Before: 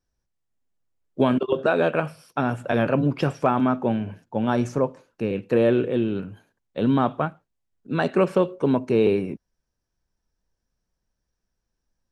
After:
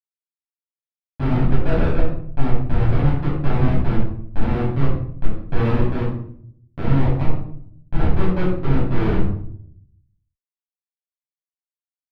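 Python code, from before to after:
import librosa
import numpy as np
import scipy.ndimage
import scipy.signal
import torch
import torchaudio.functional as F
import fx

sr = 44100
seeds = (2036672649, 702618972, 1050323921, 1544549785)

y = fx.low_shelf(x, sr, hz=83.0, db=5.0)
y = fx.schmitt(y, sr, flips_db=-17.5)
y = fx.air_absorb(y, sr, metres=390.0)
y = fx.room_shoebox(y, sr, seeds[0], volume_m3=1000.0, walls='furnished', distance_m=8.3)
y = F.gain(torch.from_numpy(y), -4.0).numpy()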